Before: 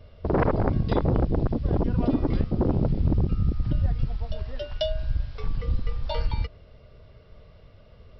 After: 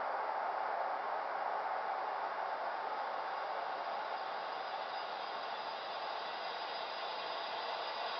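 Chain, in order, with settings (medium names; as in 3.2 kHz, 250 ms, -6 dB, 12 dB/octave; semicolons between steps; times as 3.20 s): Chebyshev high-pass 790 Hz, order 3; compression, threshold -35 dBFS, peak gain reduction 11.5 dB; Paulstretch 43×, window 0.50 s, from 0.65 s; trim +4 dB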